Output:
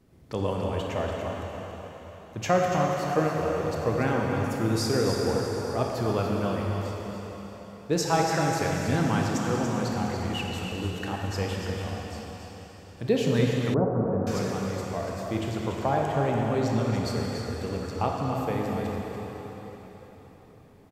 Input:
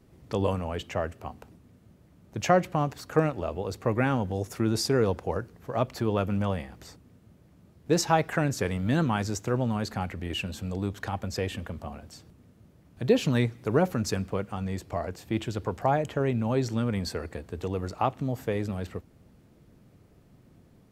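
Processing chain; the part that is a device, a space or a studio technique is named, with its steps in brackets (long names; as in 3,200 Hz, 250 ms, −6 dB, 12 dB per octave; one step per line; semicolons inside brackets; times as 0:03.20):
cave (single-tap delay 287 ms −8.5 dB; convolution reverb RT60 4.5 s, pre-delay 24 ms, DRR −1 dB)
0:13.74–0:14.27: inverse Chebyshev low-pass filter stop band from 6,100 Hz, stop band 80 dB
level −2.5 dB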